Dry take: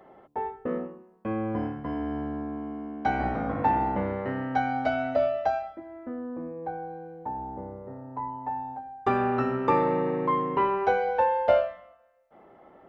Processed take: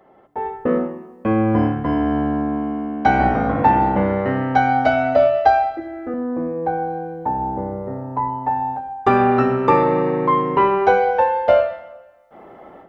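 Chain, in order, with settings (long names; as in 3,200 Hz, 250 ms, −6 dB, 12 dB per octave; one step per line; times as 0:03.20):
0:05.45–0:06.14: comb filter 2.5 ms, depth 98%
automatic gain control gain up to 12 dB
on a send: convolution reverb RT60 1.2 s, pre-delay 28 ms, DRR 12.5 dB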